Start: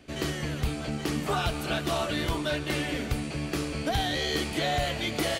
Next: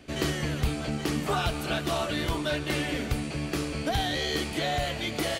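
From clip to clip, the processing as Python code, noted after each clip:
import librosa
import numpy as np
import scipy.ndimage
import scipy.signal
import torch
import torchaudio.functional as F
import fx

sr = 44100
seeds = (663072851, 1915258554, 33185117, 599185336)

y = fx.rider(x, sr, range_db=10, speed_s=2.0)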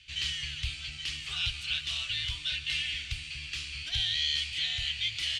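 y = fx.curve_eq(x, sr, hz=(110.0, 190.0, 570.0, 1300.0, 2900.0, 8500.0, 13000.0), db=(0, -23, -29, -10, 14, 1, -17))
y = y * librosa.db_to_amplitude(-7.5)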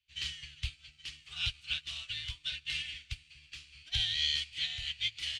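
y = fx.upward_expand(x, sr, threshold_db=-47.0, expansion=2.5)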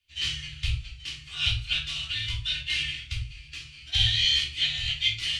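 y = fx.room_shoebox(x, sr, seeds[0], volume_m3=300.0, walls='furnished', distance_m=3.2)
y = y * librosa.db_to_amplitude(3.0)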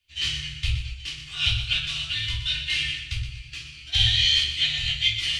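y = fx.echo_feedback(x, sr, ms=121, feedback_pct=36, wet_db=-9.5)
y = y * librosa.db_to_amplitude(2.5)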